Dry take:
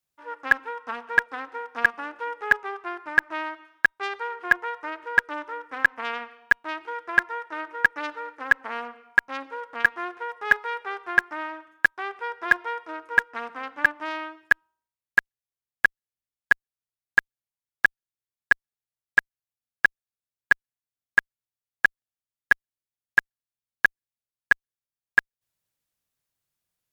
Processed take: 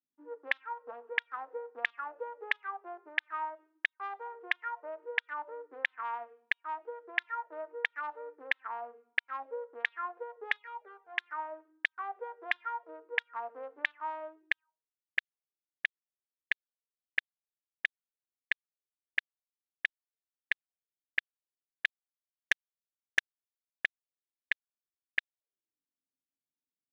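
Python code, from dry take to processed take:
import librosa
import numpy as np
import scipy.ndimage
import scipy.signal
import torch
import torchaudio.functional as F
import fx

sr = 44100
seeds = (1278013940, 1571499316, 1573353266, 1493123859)

y = fx.auto_wah(x, sr, base_hz=270.0, top_hz=3600.0, q=6.5, full_db=-17.5, direction='up')
y = fx.rider(y, sr, range_db=5, speed_s=0.5)
y = fx.leveller(y, sr, passes=2, at=(21.85, 23.85))
y = fx.high_shelf(y, sr, hz=6100.0, db=-7.0)
y = fx.env_flanger(y, sr, rest_ms=2.5, full_db=-35.5, at=(10.57, 11.17), fade=0.02)
y = y * librosa.db_to_amplitude(1.0)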